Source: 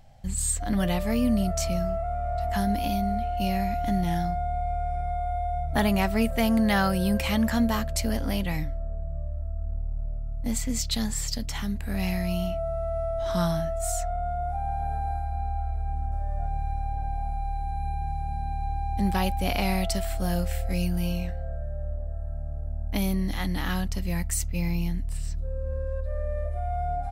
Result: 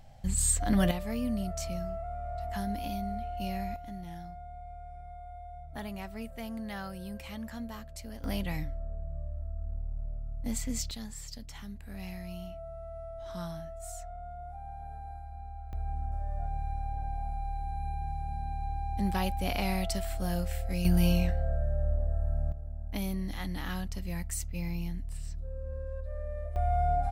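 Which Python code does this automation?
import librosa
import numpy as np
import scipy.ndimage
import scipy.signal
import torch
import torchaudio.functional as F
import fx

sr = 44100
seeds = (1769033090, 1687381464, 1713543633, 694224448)

y = fx.gain(x, sr, db=fx.steps((0.0, 0.0), (0.91, -8.5), (3.76, -16.5), (8.24, -5.5), (10.91, -13.5), (15.73, -5.0), (20.85, 3.0), (22.52, -7.5), (26.56, 1.5)))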